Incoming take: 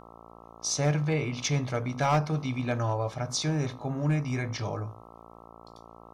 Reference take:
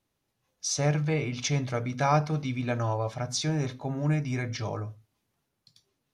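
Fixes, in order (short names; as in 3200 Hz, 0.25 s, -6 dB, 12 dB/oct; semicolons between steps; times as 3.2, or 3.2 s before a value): clip repair -18.5 dBFS; de-hum 57 Hz, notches 23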